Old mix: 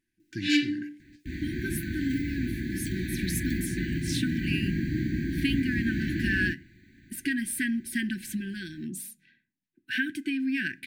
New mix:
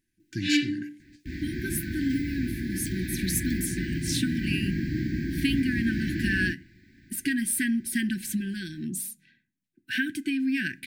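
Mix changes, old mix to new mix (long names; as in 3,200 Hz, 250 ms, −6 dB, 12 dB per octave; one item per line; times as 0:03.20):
speech: add bass and treble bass +5 dB, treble +6 dB
second sound: remove Butterworth band-reject 5,200 Hz, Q 5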